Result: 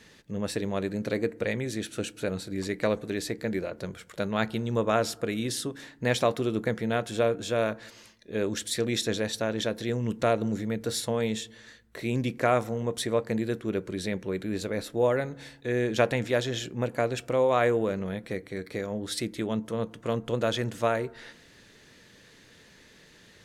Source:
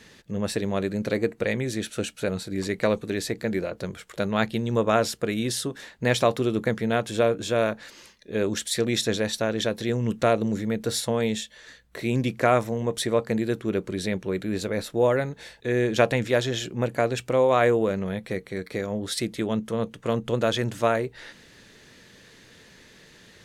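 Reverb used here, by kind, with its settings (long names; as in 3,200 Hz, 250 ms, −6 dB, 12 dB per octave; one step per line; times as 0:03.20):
feedback delay network reverb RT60 0.89 s, low-frequency decay 1.5×, high-frequency decay 0.3×, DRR 19.5 dB
level −3.5 dB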